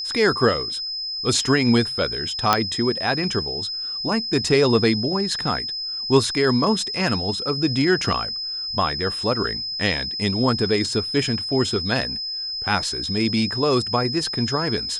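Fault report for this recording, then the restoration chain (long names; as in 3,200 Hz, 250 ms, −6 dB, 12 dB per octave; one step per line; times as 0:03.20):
whistle 5,100 Hz −26 dBFS
0:02.53: click −1 dBFS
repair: click removal
notch filter 5,100 Hz, Q 30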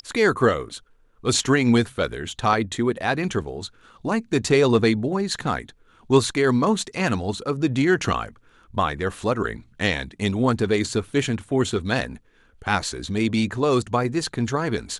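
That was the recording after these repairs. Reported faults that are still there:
none of them is left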